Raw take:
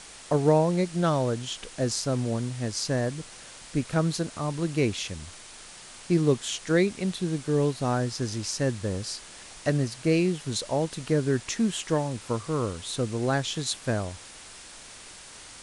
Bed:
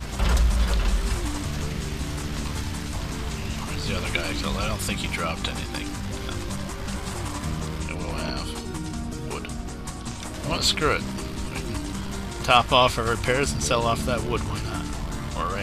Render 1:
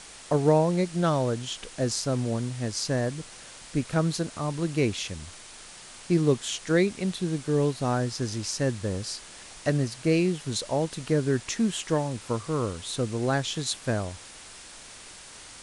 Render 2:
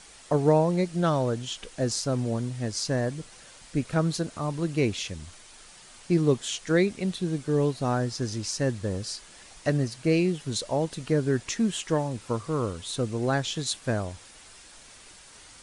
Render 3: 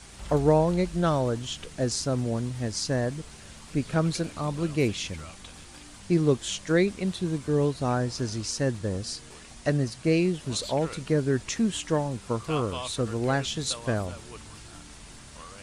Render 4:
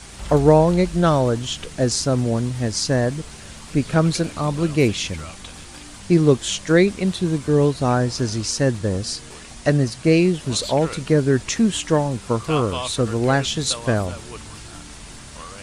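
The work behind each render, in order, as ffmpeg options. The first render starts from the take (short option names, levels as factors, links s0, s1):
-af anull
-af "afftdn=nr=6:nf=-46"
-filter_complex "[1:a]volume=0.119[s0];[0:a][s0]amix=inputs=2:normalize=0"
-af "volume=2.37"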